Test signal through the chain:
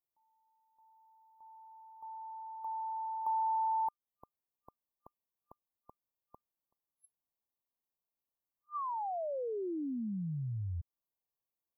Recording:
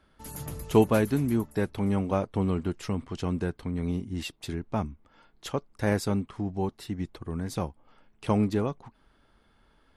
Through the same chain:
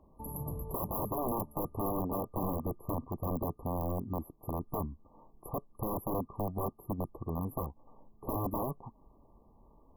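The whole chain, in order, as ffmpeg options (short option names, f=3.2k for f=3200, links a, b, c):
-af "aeval=exprs='(mod(15.8*val(0)+1,2)-1)/15.8':c=same,afftfilt=real='re*(1-between(b*sr/4096,1200,11000))':imag='im*(1-between(b*sr/4096,1200,11000))':win_size=4096:overlap=0.75,acompressor=threshold=-46dB:ratio=1.5,volume=3.5dB"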